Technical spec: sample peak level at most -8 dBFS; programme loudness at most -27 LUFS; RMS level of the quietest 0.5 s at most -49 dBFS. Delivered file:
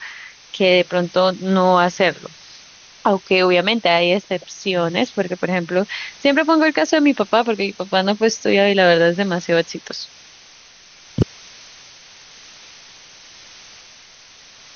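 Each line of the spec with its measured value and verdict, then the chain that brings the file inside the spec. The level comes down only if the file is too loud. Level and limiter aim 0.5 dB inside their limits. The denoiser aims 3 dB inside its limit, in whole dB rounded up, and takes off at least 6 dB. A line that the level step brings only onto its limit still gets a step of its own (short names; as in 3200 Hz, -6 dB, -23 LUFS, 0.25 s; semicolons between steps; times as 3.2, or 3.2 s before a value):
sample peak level -3.5 dBFS: fail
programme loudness -17.5 LUFS: fail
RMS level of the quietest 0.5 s -46 dBFS: fail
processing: gain -10 dB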